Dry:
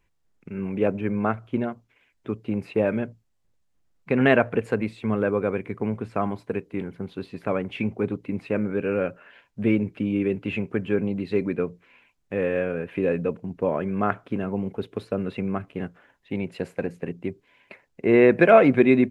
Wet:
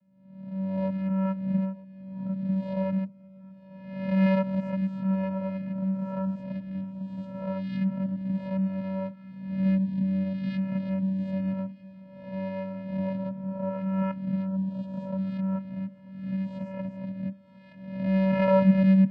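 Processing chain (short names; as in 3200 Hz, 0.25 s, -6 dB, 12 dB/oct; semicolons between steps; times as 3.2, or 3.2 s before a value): spectral swells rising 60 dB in 0.93 s; notch 3700 Hz, Q 20; vocoder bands 8, square 191 Hz; swung echo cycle 1.255 s, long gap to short 3:1, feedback 55%, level -22 dB; gain -4.5 dB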